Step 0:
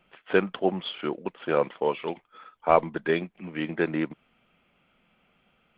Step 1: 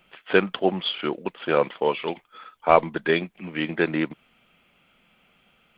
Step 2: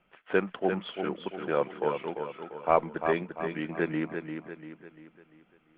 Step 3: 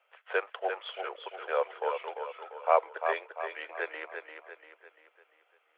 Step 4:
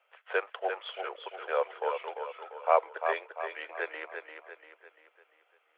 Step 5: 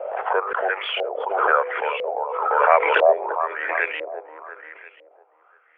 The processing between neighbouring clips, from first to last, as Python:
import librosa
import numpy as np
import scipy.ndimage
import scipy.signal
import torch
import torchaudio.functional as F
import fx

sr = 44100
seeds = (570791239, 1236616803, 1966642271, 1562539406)

y1 = fx.high_shelf(x, sr, hz=3000.0, db=10.0)
y1 = y1 * librosa.db_to_amplitude(2.5)
y2 = scipy.signal.sosfilt(scipy.signal.butter(2, 2000.0, 'lowpass', fs=sr, output='sos'), y1)
y2 = fx.echo_feedback(y2, sr, ms=345, feedback_pct=45, wet_db=-7.0)
y2 = y2 * librosa.db_to_amplitude(-6.5)
y3 = scipy.signal.sosfilt(scipy.signal.butter(8, 470.0, 'highpass', fs=sr, output='sos'), y2)
y4 = y3
y5 = fx.hum_notches(y4, sr, base_hz=50, count=10)
y5 = fx.filter_lfo_lowpass(y5, sr, shape='saw_up', hz=1.0, low_hz=540.0, high_hz=3000.0, q=4.5)
y5 = fx.pre_swell(y5, sr, db_per_s=36.0)
y5 = y5 * librosa.db_to_amplitude(5.0)